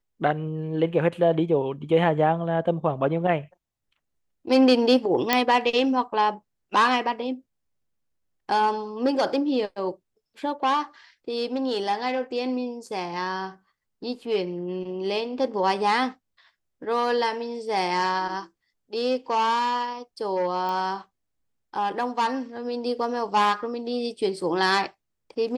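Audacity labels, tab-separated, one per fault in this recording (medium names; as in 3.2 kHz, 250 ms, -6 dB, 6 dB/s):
5.330000	5.330000	pop -4 dBFS
20.690000	20.690000	pop -20 dBFS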